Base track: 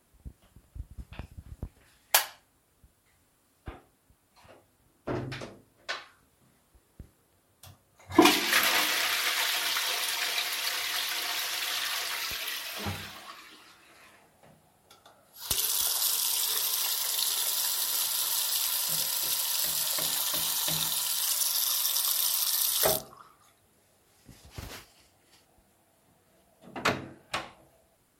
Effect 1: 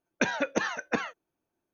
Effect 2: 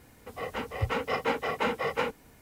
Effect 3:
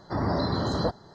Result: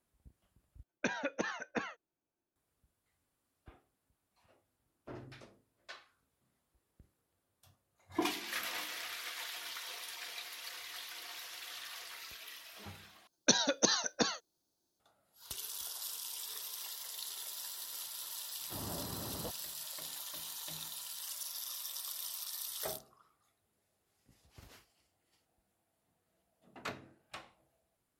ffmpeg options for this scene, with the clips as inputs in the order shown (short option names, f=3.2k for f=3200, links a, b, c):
-filter_complex "[1:a]asplit=2[a][b];[0:a]volume=-15dB[c];[b]highshelf=f=3.2k:t=q:w=3:g=11[d];[c]asplit=3[e][f][g];[e]atrim=end=0.834[h];[a]atrim=end=1.73,asetpts=PTS-STARTPTS,volume=-8.5dB[i];[f]atrim=start=2.556:end=13.274[j];[d]atrim=end=1.73,asetpts=PTS-STARTPTS,volume=-3.5dB[k];[g]atrim=start=14.996[l];[3:a]atrim=end=1.14,asetpts=PTS-STARTPTS,volume=-17.5dB,afade=t=in:d=0.004:c=hsin,afade=t=out:st=1.136:d=0.004:c=hsin,adelay=820260S[m];[h][i]acrossfade=d=0.004:c1=hsin:c2=hsin[n];[n][j]acrossfade=d=0.004:c1=hsin:c2=hsin[o];[o][k]acrossfade=d=0.004:c1=hsin:c2=hsin[p];[p][l]acrossfade=d=0.004:c1=hsin:c2=hsin[q];[q][m]amix=inputs=2:normalize=0"